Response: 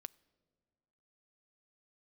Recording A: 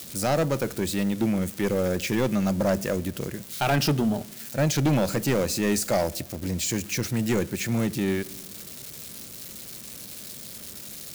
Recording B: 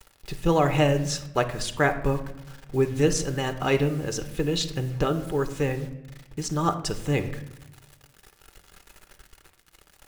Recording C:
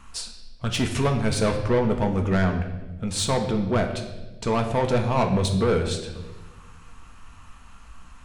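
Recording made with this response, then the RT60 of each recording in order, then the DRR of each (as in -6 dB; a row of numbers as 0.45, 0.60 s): A; 1.8, 0.90, 1.2 s; 19.5, 7.0, 4.0 dB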